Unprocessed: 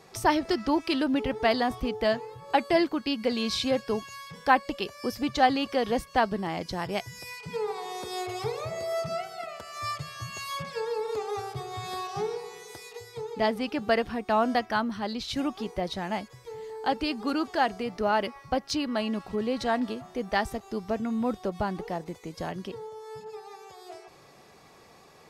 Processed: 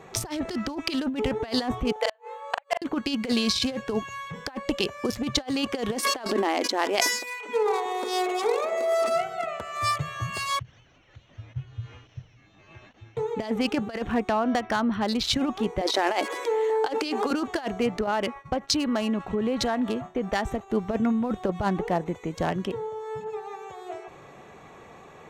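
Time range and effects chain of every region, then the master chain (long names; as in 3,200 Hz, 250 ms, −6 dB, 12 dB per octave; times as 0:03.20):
0:01.92–0:02.82: linear-phase brick-wall high-pass 450 Hz + gate with flip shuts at −17 dBFS, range −40 dB + double-tracking delay 40 ms −6 dB
0:05.95–0:09.16: linear-phase brick-wall high-pass 220 Hz + level that may fall only so fast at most 51 dB per second
0:10.59–0:13.17: Chebyshev band-stop filter 130–5,000 Hz, order 5 + sample-rate reduction 11,000 Hz + high-frequency loss of the air 240 metres
0:14.28–0:15.23: linear-phase brick-wall low-pass 6,000 Hz + downward compressor 10 to 1, threshold −27 dBFS
0:15.81–0:17.31: elliptic high-pass filter 300 Hz, stop band 50 dB + envelope flattener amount 50%
0:18.06–0:20.70: downward expander −44 dBFS + downward compressor, threshold −29 dBFS
whole clip: adaptive Wiener filter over 9 samples; parametric band 6,700 Hz +6 dB 2 octaves; compressor whose output falls as the input rises −29 dBFS, ratio −0.5; level +5 dB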